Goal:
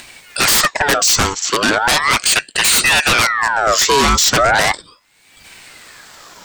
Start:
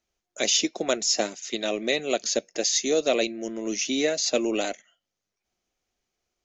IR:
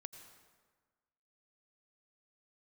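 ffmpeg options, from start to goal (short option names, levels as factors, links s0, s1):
-af "aeval=exprs='0.398*sin(PI/2*5.62*val(0)/0.398)':c=same,acompressor=mode=upward:threshold=0.112:ratio=2.5,aeval=exprs='val(0)*sin(2*PI*1500*n/s+1500*0.55/0.37*sin(2*PI*0.37*n/s))':c=same,volume=1.26"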